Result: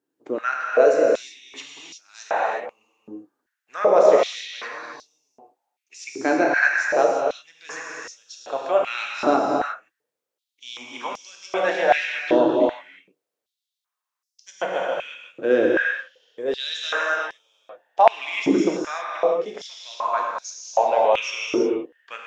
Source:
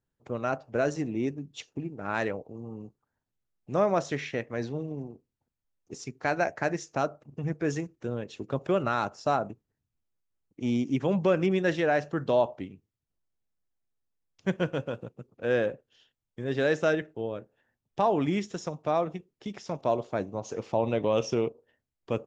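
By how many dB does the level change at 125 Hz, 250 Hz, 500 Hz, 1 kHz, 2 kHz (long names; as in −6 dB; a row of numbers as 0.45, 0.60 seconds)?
−13.0, +3.0, +7.5, +9.0, +11.0 decibels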